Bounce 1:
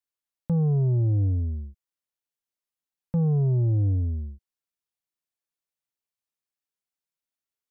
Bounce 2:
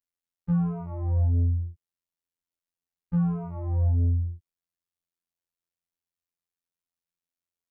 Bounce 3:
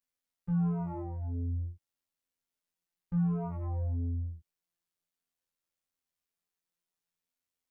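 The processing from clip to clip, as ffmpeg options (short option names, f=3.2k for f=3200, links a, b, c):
-af "aeval=exprs='0.106*(cos(1*acos(clip(val(0)/0.106,-1,1)))-cos(1*PI/2))+0.0188*(cos(5*acos(clip(val(0)/0.106,-1,1)))-cos(5*PI/2))+0.00668*(cos(7*acos(clip(val(0)/0.106,-1,1)))-cos(7*PI/2))':c=same,afftfilt=real='hypot(re,im)*cos(PI*b)':imag='0':win_size=2048:overlap=0.75,lowshelf=f=270:g=8,volume=-4dB"
-af "alimiter=level_in=2.5dB:limit=-24dB:level=0:latency=1:release=300,volume=-2.5dB,flanger=delay=15.5:depth=4.1:speed=0.26,volume=5dB"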